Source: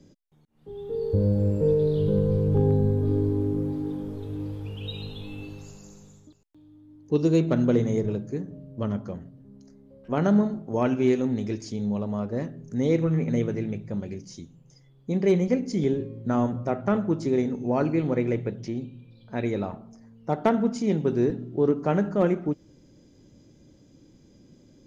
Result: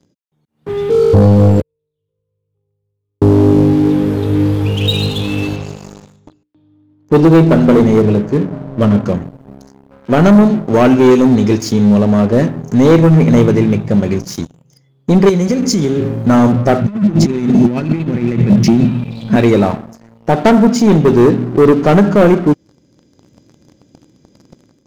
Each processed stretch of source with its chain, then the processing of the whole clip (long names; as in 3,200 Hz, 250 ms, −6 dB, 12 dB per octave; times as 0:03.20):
0:01.60–0:03.22: gate with flip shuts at −19 dBFS, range −42 dB + parametric band 350 Hz −13 dB 2.8 octaves + phaser with its sweep stopped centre 1,100 Hz, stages 8
0:05.56–0:09.06: low-pass filter 3,800 Hz + mains-hum notches 60/120/180/240/300/360/420/480/540 Hz
0:15.29–0:16.26: bass and treble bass +2 dB, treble +11 dB + downward compressor 12 to 1, threshold −28 dBFS
0:16.81–0:19.36: flat-topped bell 610 Hz −10.5 dB 2.4 octaves + compressor whose output falls as the input rises −35 dBFS, ratio −0.5 + hollow resonant body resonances 210/340/2,600 Hz, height 11 dB
whole clip: high-pass filter 76 Hz 12 dB per octave; leveller curve on the samples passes 3; automatic gain control gain up to 11 dB